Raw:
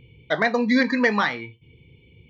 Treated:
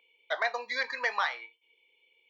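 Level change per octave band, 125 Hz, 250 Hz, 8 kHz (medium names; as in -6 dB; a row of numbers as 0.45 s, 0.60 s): under -40 dB, -38.0 dB, no reading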